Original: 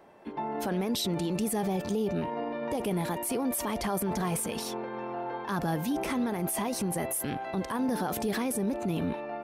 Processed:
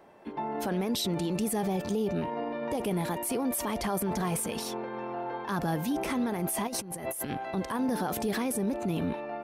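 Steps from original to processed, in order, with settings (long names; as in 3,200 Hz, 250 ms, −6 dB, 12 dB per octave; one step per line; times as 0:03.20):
0:06.67–0:07.30: compressor whose output falls as the input rises −35 dBFS, ratio −0.5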